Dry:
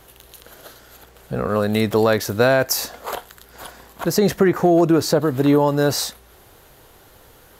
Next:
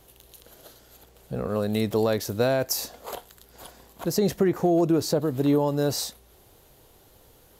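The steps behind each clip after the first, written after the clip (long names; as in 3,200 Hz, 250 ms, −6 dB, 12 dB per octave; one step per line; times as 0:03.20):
parametric band 1,500 Hz −7.5 dB 1.4 octaves
level −5.5 dB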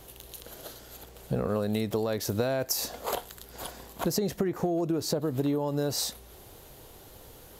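downward compressor 16 to 1, threshold −30 dBFS, peak gain reduction 13.5 dB
level +5.5 dB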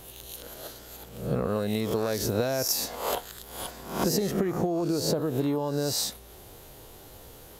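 peak hold with a rise ahead of every peak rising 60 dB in 0.57 s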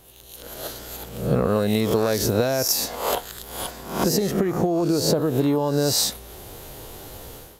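automatic gain control gain up to 14 dB
level −5 dB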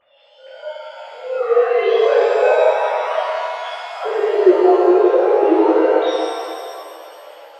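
three sine waves on the formant tracks
reverb with rising layers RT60 2.2 s, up +7 semitones, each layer −8 dB, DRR −11 dB
level −4 dB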